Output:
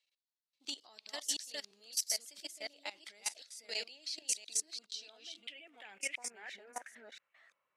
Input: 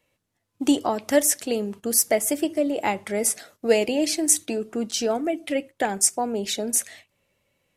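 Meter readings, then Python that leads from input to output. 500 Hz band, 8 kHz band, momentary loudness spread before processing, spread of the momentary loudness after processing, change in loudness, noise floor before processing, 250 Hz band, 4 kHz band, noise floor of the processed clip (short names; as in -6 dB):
-29.5 dB, -15.0 dB, 8 LU, 14 LU, -16.5 dB, -76 dBFS, -35.5 dB, -8.0 dB, under -85 dBFS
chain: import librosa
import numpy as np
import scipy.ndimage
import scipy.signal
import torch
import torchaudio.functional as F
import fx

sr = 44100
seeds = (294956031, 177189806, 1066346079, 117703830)

y = fx.reverse_delay(x, sr, ms=342, wet_db=0)
y = fx.level_steps(y, sr, step_db=18)
y = fx.filter_sweep_bandpass(y, sr, from_hz=4300.0, to_hz=1200.0, start_s=4.83, end_s=7.53, q=3.6)
y = F.gain(torch.from_numpy(y), 1.5).numpy()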